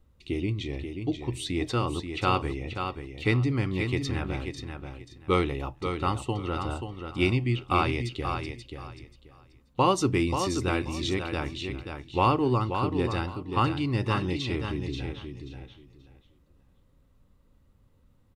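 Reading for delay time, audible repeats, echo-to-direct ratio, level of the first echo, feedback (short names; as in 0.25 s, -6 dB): 0.533 s, 3, -7.0 dB, -7.0 dB, 21%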